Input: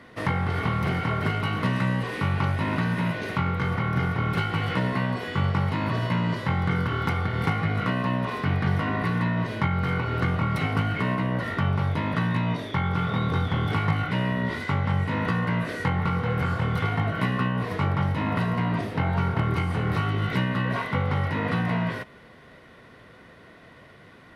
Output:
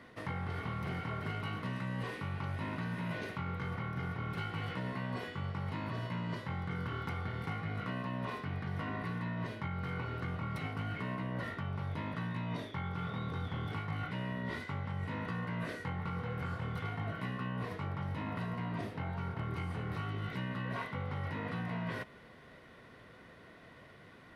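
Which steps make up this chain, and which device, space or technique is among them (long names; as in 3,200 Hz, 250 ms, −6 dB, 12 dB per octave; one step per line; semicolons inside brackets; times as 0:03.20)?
compression on the reversed sound (reversed playback; downward compressor, threshold −29 dBFS, peak gain reduction 10.5 dB; reversed playback)
level −6 dB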